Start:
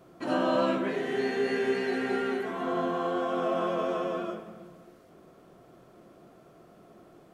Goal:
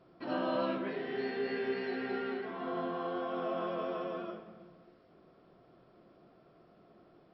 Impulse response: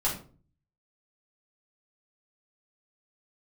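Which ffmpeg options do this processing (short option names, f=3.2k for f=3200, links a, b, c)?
-af "volume=-7dB" -ar 44100 -c:a mp2 -b:a 48k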